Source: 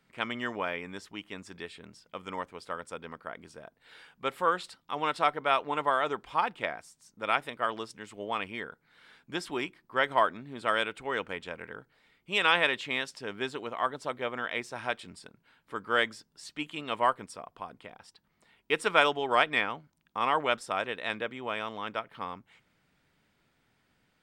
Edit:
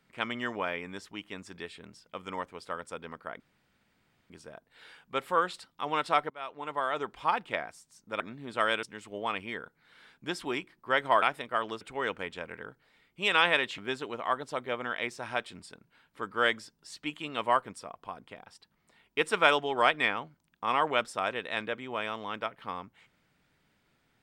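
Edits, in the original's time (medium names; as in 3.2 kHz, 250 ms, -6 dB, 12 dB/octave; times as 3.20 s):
3.40 s: insert room tone 0.90 s
5.40–6.30 s: fade in, from -23.5 dB
7.30–7.89 s: swap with 10.28–10.91 s
12.88–13.31 s: delete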